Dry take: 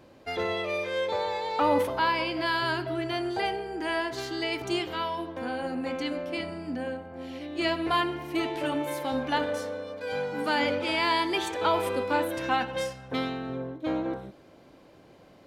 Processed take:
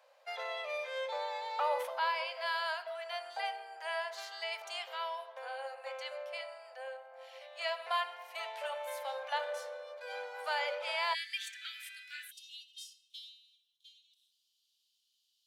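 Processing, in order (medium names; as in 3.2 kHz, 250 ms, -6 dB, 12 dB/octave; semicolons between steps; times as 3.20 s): steep high-pass 520 Hz 72 dB/octave, from 11.13 s 1.6 kHz, from 12.30 s 3 kHz; trim -7 dB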